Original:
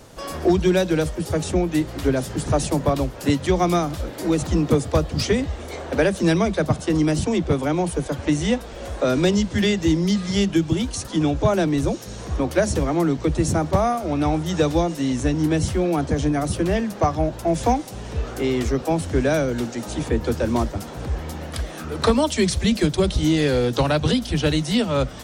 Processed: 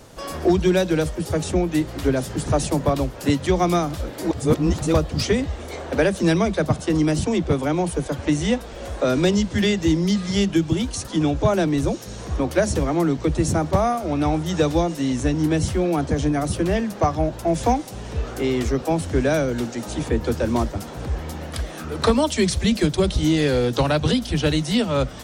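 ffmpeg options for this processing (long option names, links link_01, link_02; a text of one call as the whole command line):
ffmpeg -i in.wav -filter_complex "[0:a]asplit=3[link_01][link_02][link_03];[link_01]atrim=end=4.312[link_04];[link_02]atrim=start=4.308:end=4.942,asetpts=PTS-STARTPTS,areverse[link_05];[link_03]atrim=start=4.938[link_06];[link_04][link_05]acrossfade=duration=0.004:curve1=hsin:curve2=hsin[link_07];[link_07][link_06]acrossfade=duration=0.004:curve1=hsin:curve2=hsin" out.wav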